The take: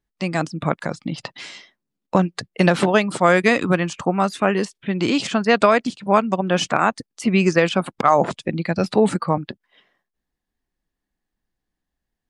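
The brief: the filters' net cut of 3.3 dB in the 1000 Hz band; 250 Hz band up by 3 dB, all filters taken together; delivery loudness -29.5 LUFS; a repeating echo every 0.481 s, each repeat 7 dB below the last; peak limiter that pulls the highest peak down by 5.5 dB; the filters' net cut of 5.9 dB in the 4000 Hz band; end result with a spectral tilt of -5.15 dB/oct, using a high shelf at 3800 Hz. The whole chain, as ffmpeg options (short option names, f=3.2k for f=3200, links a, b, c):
-af "equalizer=f=250:t=o:g=4.5,equalizer=f=1k:t=o:g=-4,highshelf=f=3.8k:g=-8,equalizer=f=4k:t=o:g=-3,alimiter=limit=-7.5dB:level=0:latency=1,aecho=1:1:481|962|1443|1924|2405:0.447|0.201|0.0905|0.0407|0.0183,volume=-9.5dB"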